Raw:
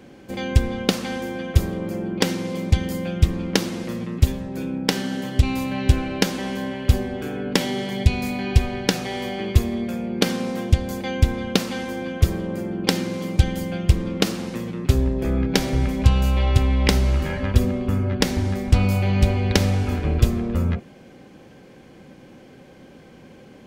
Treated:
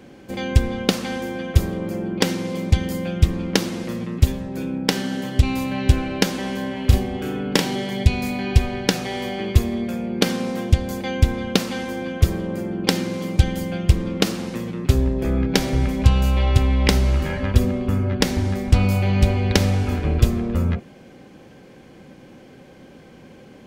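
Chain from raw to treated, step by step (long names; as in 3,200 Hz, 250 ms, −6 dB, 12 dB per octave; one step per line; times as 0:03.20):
0:06.73–0:07.76: double-tracking delay 35 ms −4.5 dB
level +1 dB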